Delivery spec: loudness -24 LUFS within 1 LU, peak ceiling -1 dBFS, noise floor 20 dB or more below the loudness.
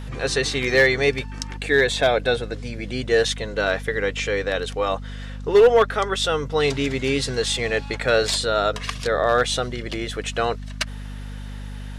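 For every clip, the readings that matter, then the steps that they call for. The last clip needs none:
clipped samples 0.5%; clipping level -8.5 dBFS; hum 50 Hz; highest harmonic 250 Hz; hum level -31 dBFS; loudness -21.5 LUFS; peak level -8.5 dBFS; loudness target -24.0 LUFS
-> clip repair -8.5 dBFS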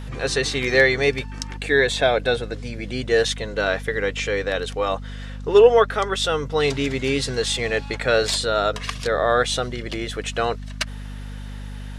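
clipped samples 0.0%; hum 50 Hz; highest harmonic 250 Hz; hum level -31 dBFS
-> de-hum 50 Hz, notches 5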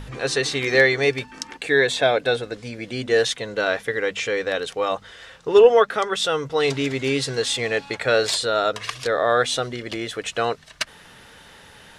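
hum not found; loudness -21.5 LUFS; peak level -2.5 dBFS; loudness target -24.0 LUFS
-> trim -2.5 dB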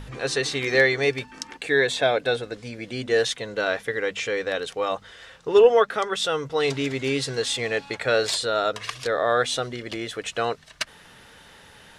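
loudness -24.0 LUFS; peak level -5.0 dBFS; noise floor -50 dBFS

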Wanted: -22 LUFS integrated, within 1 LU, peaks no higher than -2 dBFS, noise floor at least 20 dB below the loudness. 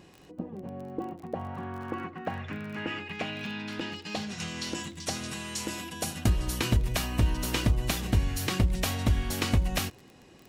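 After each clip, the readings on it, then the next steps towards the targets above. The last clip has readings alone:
tick rate 26 per s; loudness -31.0 LUFS; peak level -13.0 dBFS; loudness target -22.0 LUFS
-> de-click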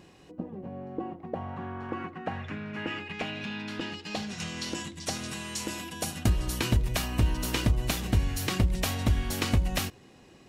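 tick rate 0 per s; loudness -31.5 LUFS; peak level -13.0 dBFS; loudness target -22.0 LUFS
-> trim +9.5 dB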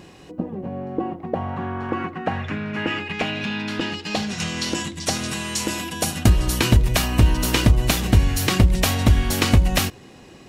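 loudness -22.0 LUFS; peak level -3.5 dBFS; noise floor -45 dBFS

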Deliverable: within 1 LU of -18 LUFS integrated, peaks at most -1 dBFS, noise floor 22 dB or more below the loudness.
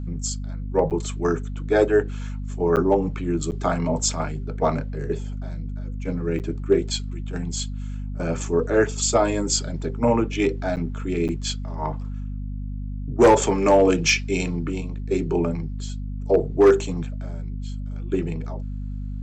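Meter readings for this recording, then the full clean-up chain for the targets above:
dropouts 6; longest dropout 8.5 ms; hum 50 Hz; highest harmonic 250 Hz; hum level -27 dBFS; loudness -23.5 LUFS; peak level -7.5 dBFS; loudness target -18.0 LUFS
-> interpolate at 0.90/2.76/3.51/6.39/10.76/11.28 s, 8.5 ms; hum notches 50/100/150/200/250 Hz; trim +5.5 dB

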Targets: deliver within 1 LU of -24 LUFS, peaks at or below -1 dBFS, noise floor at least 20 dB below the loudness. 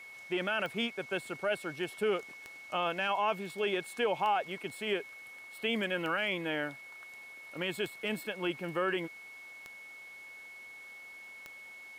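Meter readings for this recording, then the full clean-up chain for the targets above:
clicks found 7; steady tone 2.2 kHz; tone level -47 dBFS; loudness -34.0 LUFS; peak level -21.0 dBFS; loudness target -24.0 LUFS
-> de-click; band-stop 2.2 kHz, Q 30; trim +10 dB

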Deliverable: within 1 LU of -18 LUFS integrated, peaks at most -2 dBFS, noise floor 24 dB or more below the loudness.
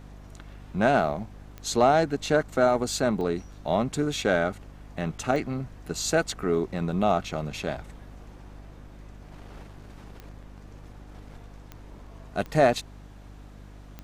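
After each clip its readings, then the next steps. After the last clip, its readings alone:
clicks found 7; hum 50 Hz; highest harmonic 300 Hz; hum level -44 dBFS; loudness -26.0 LUFS; peak level -7.0 dBFS; loudness target -18.0 LUFS
-> de-click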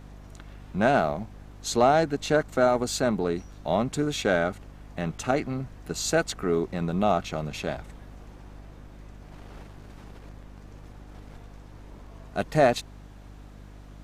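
clicks found 0; hum 50 Hz; highest harmonic 300 Hz; hum level -44 dBFS
-> de-hum 50 Hz, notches 6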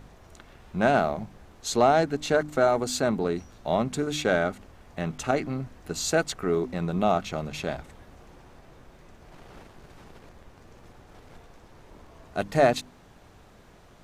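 hum not found; loudness -26.5 LUFS; peak level -6.5 dBFS; loudness target -18.0 LUFS
-> trim +8.5 dB; peak limiter -2 dBFS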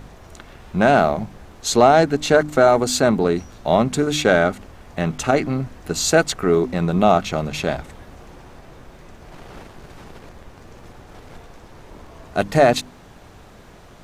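loudness -18.5 LUFS; peak level -2.0 dBFS; noise floor -45 dBFS

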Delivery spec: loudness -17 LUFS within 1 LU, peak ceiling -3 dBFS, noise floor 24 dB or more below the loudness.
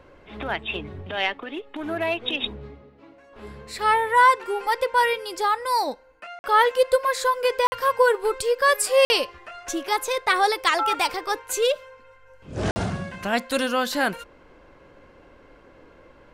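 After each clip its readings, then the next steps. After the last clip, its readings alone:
dropouts 4; longest dropout 50 ms; loudness -22.5 LUFS; peak level -8.0 dBFS; loudness target -17.0 LUFS
-> interpolate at 6.39/7.67/9.05/12.71 s, 50 ms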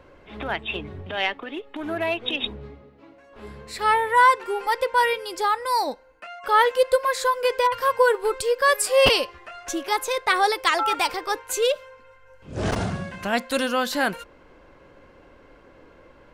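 dropouts 0; loudness -22.5 LUFS; peak level -3.5 dBFS; loudness target -17.0 LUFS
-> trim +5.5 dB; peak limiter -3 dBFS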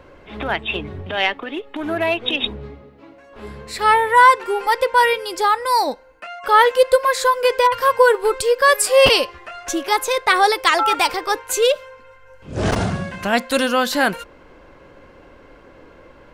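loudness -17.0 LUFS; peak level -3.0 dBFS; noise floor -47 dBFS

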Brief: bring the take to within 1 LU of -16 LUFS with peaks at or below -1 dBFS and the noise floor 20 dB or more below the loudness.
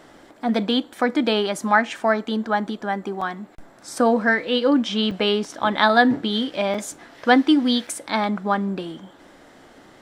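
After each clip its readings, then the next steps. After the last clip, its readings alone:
dropouts 4; longest dropout 4.7 ms; loudness -21.0 LUFS; peak level -1.0 dBFS; loudness target -16.0 LUFS
-> interpolate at 3.21/5.11/6.74/7.87 s, 4.7 ms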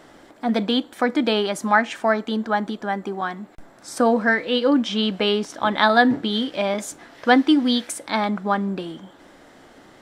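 dropouts 0; loudness -21.0 LUFS; peak level -1.0 dBFS; loudness target -16.0 LUFS
-> trim +5 dB; peak limiter -1 dBFS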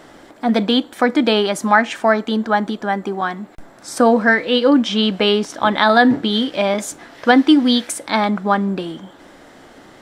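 loudness -16.5 LUFS; peak level -1.0 dBFS; noise floor -45 dBFS

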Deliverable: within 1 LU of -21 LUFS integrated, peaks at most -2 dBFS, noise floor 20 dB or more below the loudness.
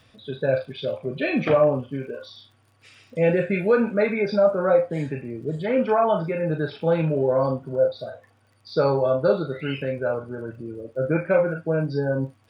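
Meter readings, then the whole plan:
tick rate 35 per s; loudness -23.0 LUFS; peak level -7.5 dBFS; loudness target -21.0 LUFS
-> de-click; trim +2 dB

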